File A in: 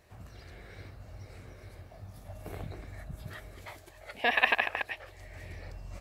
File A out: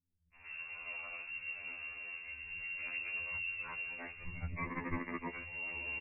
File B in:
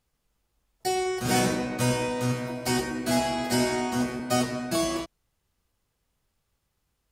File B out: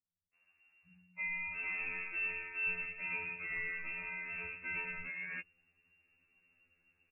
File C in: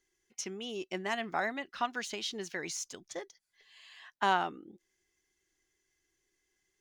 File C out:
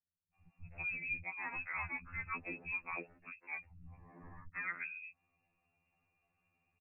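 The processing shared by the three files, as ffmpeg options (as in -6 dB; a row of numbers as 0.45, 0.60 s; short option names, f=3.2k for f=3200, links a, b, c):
-filter_complex "[0:a]areverse,acompressor=threshold=-39dB:ratio=6,areverse,lowpass=f=2.4k:t=q:w=0.5098,lowpass=f=2.4k:t=q:w=0.6013,lowpass=f=2.4k:t=q:w=0.9,lowpass=f=2.4k:t=q:w=2.563,afreqshift=-2800,acrossover=split=180[a][b];[b]adelay=340[c];[a][c]amix=inputs=2:normalize=0,asubboost=boost=11.5:cutoff=240,afftfilt=real='re*2*eq(mod(b,4),0)':imag='im*2*eq(mod(b,4),0)':win_size=2048:overlap=0.75,volume=5dB"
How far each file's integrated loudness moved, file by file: -9.5, -11.0, -6.0 LU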